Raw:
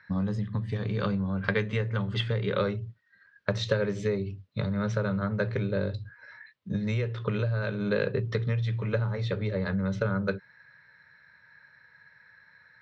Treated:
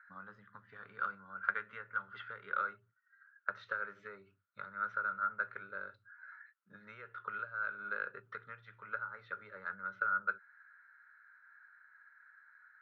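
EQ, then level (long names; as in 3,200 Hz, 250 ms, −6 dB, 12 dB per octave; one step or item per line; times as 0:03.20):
resonant band-pass 1,400 Hz, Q 15
high-frequency loss of the air 65 metres
+9.0 dB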